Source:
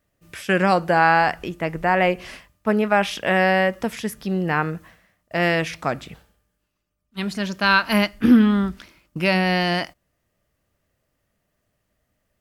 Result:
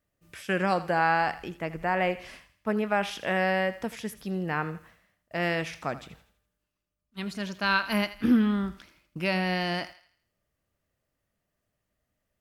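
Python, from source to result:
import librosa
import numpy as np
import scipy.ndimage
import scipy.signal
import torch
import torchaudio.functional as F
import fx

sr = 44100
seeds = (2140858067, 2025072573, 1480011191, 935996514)

y = fx.echo_thinned(x, sr, ms=82, feedback_pct=42, hz=690.0, wet_db=-14)
y = y * 10.0 ** (-8.0 / 20.0)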